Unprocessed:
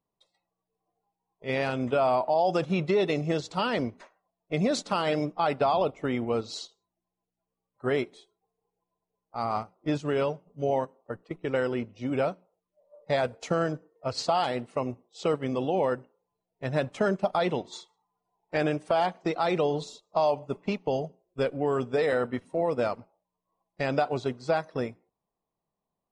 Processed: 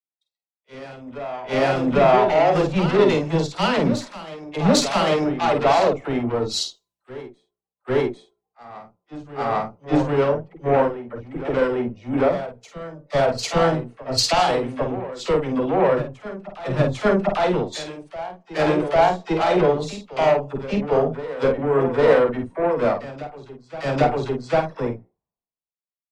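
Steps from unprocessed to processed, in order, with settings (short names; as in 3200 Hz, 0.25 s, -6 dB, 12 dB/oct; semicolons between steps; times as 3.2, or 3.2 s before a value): high shelf 2300 Hz -6.5 dB; in parallel at -1 dB: compressor, threshold -33 dBFS, peak gain reduction 12 dB; on the sum: added harmonics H 5 -11 dB, 8 -19 dB, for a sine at -10 dBFS; doubler 50 ms -6 dB; dispersion lows, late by 51 ms, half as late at 590 Hz; on a send: reverse echo 0.798 s -7.5 dB; on the sum: three-band expander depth 100%; gain -1 dB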